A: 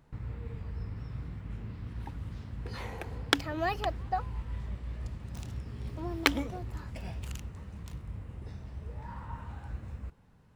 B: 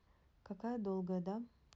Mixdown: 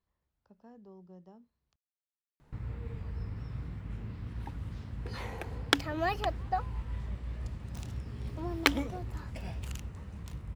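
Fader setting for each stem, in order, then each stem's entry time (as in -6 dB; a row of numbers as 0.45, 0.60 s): 0.0, -13.0 dB; 2.40, 0.00 s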